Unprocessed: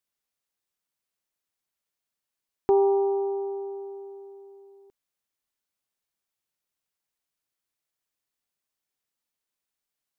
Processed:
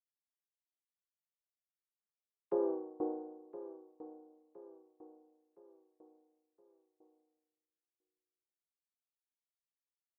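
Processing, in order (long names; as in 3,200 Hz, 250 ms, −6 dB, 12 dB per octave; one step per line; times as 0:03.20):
channel vocoder with a chord as carrier major triad, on C3
source passing by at 0:02.68, 23 m/s, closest 2.9 metres
high-pass filter 230 Hz 12 dB per octave
repeating echo 1,016 ms, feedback 45%, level −14 dB
tremolo with a ramp in dB decaying 1 Hz, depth 26 dB
level +4.5 dB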